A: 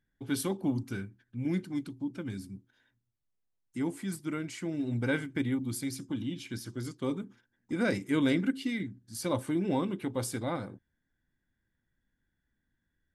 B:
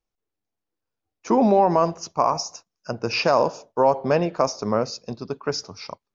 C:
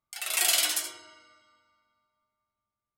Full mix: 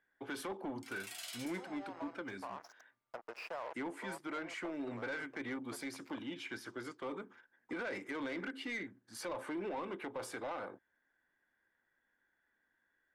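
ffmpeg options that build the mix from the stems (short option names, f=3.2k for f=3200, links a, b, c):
-filter_complex "[0:a]volume=0.5dB,asplit=2[a][b];[1:a]acompressor=threshold=-27dB:ratio=5,acrusher=bits=4:mix=0:aa=0.5,adelay=250,volume=-18.5dB[c];[2:a]acompressor=threshold=-50dB:ratio=1.5,adelay=700,volume=-18dB[d];[b]apad=whole_len=282111[e];[c][e]sidechaincompress=threshold=-31dB:ratio=8:attack=16:release=1000[f];[a][f]amix=inputs=2:normalize=0,acrossover=split=350 2200:gain=0.178 1 0.178[g][h][i];[g][h][i]amix=inputs=3:normalize=0,alimiter=level_in=6.5dB:limit=-24dB:level=0:latency=1:release=53,volume=-6.5dB,volume=0dB[j];[d][j]amix=inputs=2:normalize=0,asplit=2[k][l];[l]highpass=f=720:p=1,volume=15dB,asoftclip=type=tanh:threshold=-28.5dB[m];[k][m]amix=inputs=2:normalize=0,lowpass=f=5.8k:p=1,volume=-6dB,alimiter=level_in=9.5dB:limit=-24dB:level=0:latency=1:release=374,volume=-9.5dB"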